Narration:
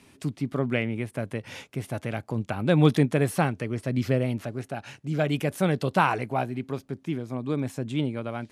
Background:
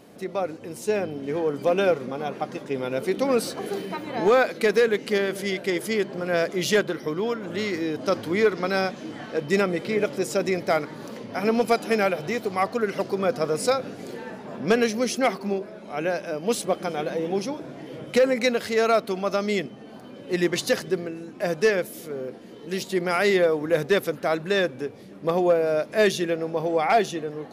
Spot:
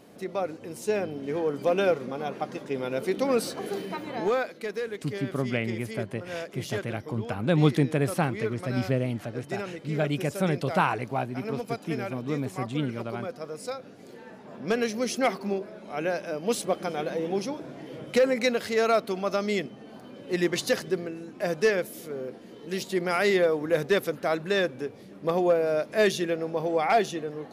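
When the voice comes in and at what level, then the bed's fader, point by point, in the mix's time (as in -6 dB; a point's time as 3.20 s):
4.80 s, -2.0 dB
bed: 4.08 s -2.5 dB
4.60 s -12.5 dB
13.82 s -12.5 dB
15.22 s -2.5 dB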